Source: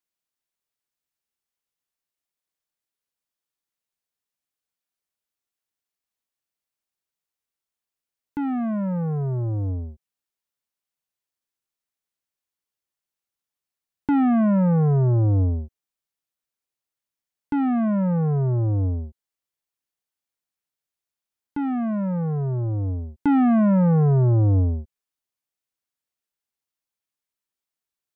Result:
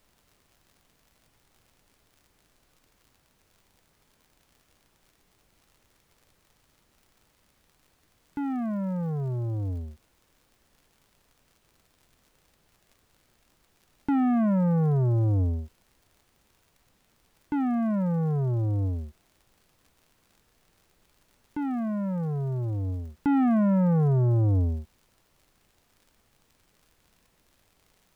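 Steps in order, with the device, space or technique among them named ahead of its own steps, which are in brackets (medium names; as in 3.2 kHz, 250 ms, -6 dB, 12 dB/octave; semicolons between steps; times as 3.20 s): vinyl LP (wow and flutter; crackle; pink noise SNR 37 dB); trim -4.5 dB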